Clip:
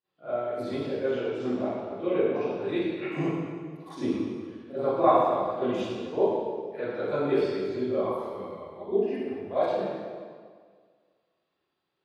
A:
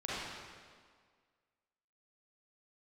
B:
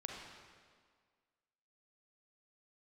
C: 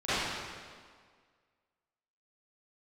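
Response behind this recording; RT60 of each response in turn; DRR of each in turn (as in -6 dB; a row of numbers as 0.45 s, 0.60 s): C; 1.8 s, 1.8 s, 1.8 s; -9.0 dB, -0.5 dB, -18.5 dB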